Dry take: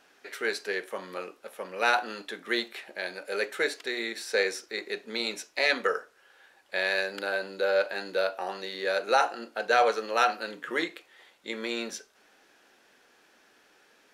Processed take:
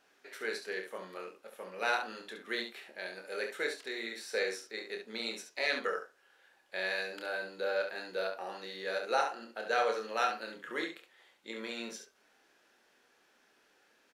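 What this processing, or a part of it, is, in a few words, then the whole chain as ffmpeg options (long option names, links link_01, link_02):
slapback doubling: -filter_complex "[0:a]asplit=3[link_01][link_02][link_03];[link_02]adelay=27,volume=-6dB[link_04];[link_03]adelay=69,volume=-7dB[link_05];[link_01][link_04][link_05]amix=inputs=3:normalize=0,volume=-8.5dB"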